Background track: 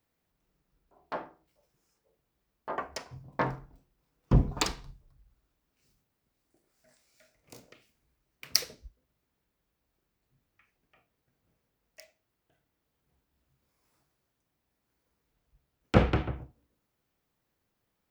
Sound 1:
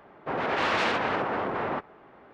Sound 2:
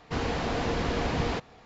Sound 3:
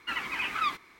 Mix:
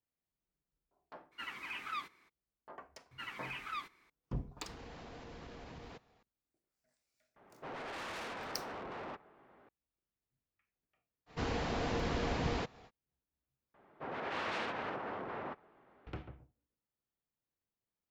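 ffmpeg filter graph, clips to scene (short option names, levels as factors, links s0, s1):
-filter_complex "[3:a]asplit=2[s0][s1];[2:a]asplit=2[s2][s3];[1:a]asplit=2[s4][s5];[0:a]volume=0.15[s6];[s0]highpass=56[s7];[s2]acompressor=threshold=0.0355:ratio=6:attack=3.2:release=140:knee=1:detection=peak[s8];[s4]asoftclip=type=tanh:threshold=0.0299[s9];[s3]acompressor=mode=upward:threshold=0.00562:ratio=2.5:attack=3.2:release=140:knee=2.83:detection=peak[s10];[s6]asplit=2[s11][s12];[s11]atrim=end=13.744[s13];[s5]atrim=end=2.33,asetpts=PTS-STARTPTS,volume=0.237[s14];[s12]atrim=start=16.066[s15];[s7]atrim=end=0.99,asetpts=PTS-STARTPTS,volume=0.266,afade=t=in:d=0.02,afade=t=out:st=0.97:d=0.02,adelay=1310[s16];[s1]atrim=end=0.99,asetpts=PTS-STARTPTS,volume=0.237,afade=t=in:d=0.004:c=hsin,afade=t=out:st=0.986:d=0.004:c=hsin,adelay=3110[s17];[s8]atrim=end=1.65,asetpts=PTS-STARTPTS,volume=0.141,afade=t=in:d=0.004:c=hsin,afade=t=out:st=1.646:d=0.004:c=hsin,adelay=4580[s18];[s9]atrim=end=2.33,asetpts=PTS-STARTPTS,volume=0.299,afade=t=in:d=0.004:c=hsin,afade=t=out:st=2.326:d=0.004:c=hsin,adelay=7360[s19];[s10]atrim=end=1.65,asetpts=PTS-STARTPTS,volume=0.473,afade=t=in:d=0.05,afade=t=out:st=1.6:d=0.05,adelay=11260[s20];[s13][s14]acrossfade=d=0.004:c1=hsin:c2=hsin[s21];[s21][s15]acrossfade=d=0.004:c1=hsin:c2=hsin[s22];[s22][s16][s17][s18][s19][s20]amix=inputs=6:normalize=0"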